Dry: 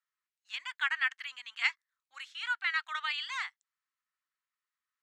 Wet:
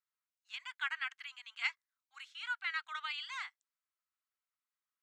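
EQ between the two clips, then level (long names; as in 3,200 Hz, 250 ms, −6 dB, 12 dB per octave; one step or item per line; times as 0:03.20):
elliptic high-pass filter 630 Hz, stop band 40 dB
notch filter 1,800 Hz, Q 11
−5.0 dB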